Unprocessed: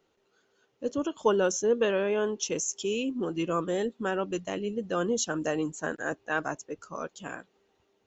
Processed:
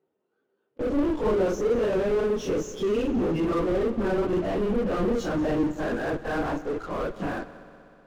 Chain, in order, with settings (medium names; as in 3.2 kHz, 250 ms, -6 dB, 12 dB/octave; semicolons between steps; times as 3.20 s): phase randomisation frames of 100 ms; band-pass 240–5900 Hz; treble shelf 4.3 kHz -11.5 dB; in parallel at -11 dB: fuzz box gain 48 dB, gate -53 dBFS; on the sum: tilt EQ -3.5 dB/octave; on a send: multi-head delay 62 ms, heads first and third, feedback 73%, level -19 dB; on the sum: trim -7.5 dB